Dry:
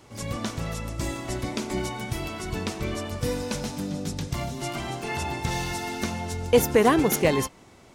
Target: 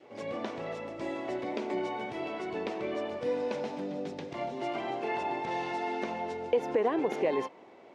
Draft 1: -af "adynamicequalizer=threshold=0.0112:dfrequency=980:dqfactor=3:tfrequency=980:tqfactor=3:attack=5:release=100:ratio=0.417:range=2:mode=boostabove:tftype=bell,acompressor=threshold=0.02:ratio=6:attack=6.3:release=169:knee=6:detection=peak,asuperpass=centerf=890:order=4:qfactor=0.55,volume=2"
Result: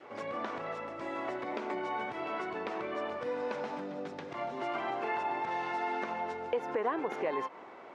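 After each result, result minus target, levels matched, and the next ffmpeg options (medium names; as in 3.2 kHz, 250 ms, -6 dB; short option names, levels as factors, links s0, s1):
compression: peak gain reduction +7.5 dB; 1 kHz band +3.0 dB
-af "adynamicequalizer=threshold=0.0112:dfrequency=980:dqfactor=3:tfrequency=980:tqfactor=3:attack=5:release=100:ratio=0.417:range=2:mode=boostabove:tftype=bell,acompressor=threshold=0.0562:ratio=6:attack=6.3:release=169:knee=6:detection=peak,asuperpass=centerf=890:order=4:qfactor=0.55,volume=2"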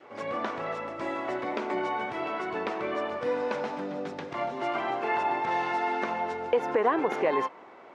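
1 kHz band +3.0 dB
-af "adynamicequalizer=threshold=0.0112:dfrequency=980:dqfactor=3:tfrequency=980:tqfactor=3:attack=5:release=100:ratio=0.417:range=2:mode=boostabove:tftype=bell,acompressor=threshold=0.0562:ratio=6:attack=6.3:release=169:knee=6:detection=peak,asuperpass=centerf=890:order=4:qfactor=0.55,equalizer=f=1300:w=1.1:g=-12,volume=2"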